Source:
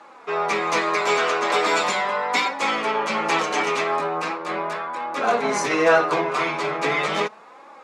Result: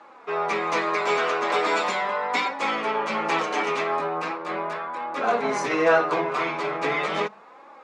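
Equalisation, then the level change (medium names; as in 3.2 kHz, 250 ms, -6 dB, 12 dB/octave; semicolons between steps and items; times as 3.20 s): low-pass 3.5 kHz 6 dB/octave; hum notches 50/100/150/200 Hz; -2.0 dB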